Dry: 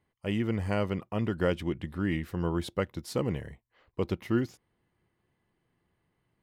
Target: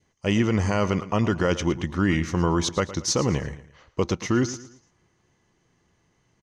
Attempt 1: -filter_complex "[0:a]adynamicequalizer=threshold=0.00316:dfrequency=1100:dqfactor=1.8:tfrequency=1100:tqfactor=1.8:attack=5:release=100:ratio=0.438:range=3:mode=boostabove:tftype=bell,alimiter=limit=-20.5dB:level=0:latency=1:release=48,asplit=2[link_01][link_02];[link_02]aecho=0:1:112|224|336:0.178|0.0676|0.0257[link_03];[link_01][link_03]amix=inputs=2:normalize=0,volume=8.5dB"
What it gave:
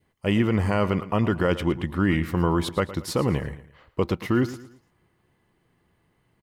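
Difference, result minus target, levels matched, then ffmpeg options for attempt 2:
8,000 Hz band −11.5 dB
-filter_complex "[0:a]adynamicequalizer=threshold=0.00316:dfrequency=1100:dqfactor=1.8:tfrequency=1100:tqfactor=1.8:attack=5:release=100:ratio=0.438:range=3:mode=boostabove:tftype=bell,lowpass=frequency=6200:width_type=q:width=10,alimiter=limit=-20.5dB:level=0:latency=1:release=48,asplit=2[link_01][link_02];[link_02]aecho=0:1:112|224|336:0.178|0.0676|0.0257[link_03];[link_01][link_03]amix=inputs=2:normalize=0,volume=8.5dB"

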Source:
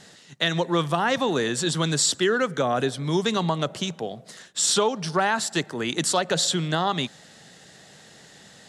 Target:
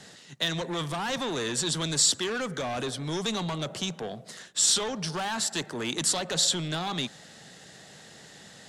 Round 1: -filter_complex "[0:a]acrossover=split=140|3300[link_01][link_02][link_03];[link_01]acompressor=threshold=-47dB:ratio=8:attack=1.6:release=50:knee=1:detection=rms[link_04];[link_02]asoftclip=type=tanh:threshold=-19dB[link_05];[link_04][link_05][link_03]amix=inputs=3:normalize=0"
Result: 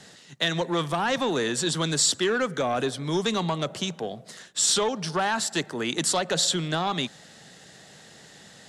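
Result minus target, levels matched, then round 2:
soft clipping: distortion −9 dB
-filter_complex "[0:a]acrossover=split=140|3300[link_01][link_02][link_03];[link_01]acompressor=threshold=-47dB:ratio=8:attack=1.6:release=50:knee=1:detection=rms[link_04];[link_02]asoftclip=type=tanh:threshold=-29.5dB[link_05];[link_04][link_05][link_03]amix=inputs=3:normalize=0"

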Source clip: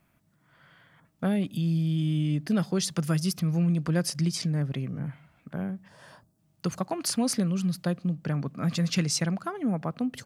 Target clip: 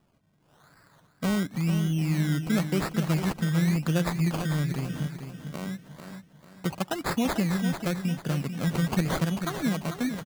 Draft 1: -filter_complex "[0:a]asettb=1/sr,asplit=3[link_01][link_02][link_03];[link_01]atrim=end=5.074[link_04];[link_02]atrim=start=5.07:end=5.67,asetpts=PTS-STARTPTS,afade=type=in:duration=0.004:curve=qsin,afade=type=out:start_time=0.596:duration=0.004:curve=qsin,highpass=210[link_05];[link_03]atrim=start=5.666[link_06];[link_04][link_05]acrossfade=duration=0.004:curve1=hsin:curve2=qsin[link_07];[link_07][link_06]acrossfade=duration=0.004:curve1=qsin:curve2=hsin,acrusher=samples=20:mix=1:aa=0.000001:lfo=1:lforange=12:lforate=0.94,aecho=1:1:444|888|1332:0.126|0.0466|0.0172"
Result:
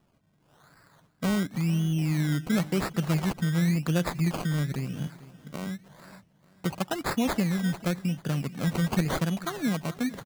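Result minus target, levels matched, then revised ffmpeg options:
echo-to-direct −9.5 dB
-filter_complex "[0:a]asettb=1/sr,asplit=3[link_01][link_02][link_03];[link_01]atrim=end=5.074[link_04];[link_02]atrim=start=5.07:end=5.67,asetpts=PTS-STARTPTS,afade=type=in:duration=0.004:curve=qsin,afade=type=out:start_time=0.596:duration=0.004:curve=qsin,highpass=210[link_05];[link_03]atrim=start=5.666[link_06];[link_04][link_05]acrossfade=duration=0.004:curve1=hsin:curve2=qsin[link_07];[link_07][link_06]acrossfade=duration=0.004:curve1=qsin:curve2=hsin,acrusher=samples=20:mix=1:aa=0.000001:lfo=1:lforange=12:lforate=0.94,aecho=1:1:444|888|1332|1776:0.376|0.139|0.0515|0.019"

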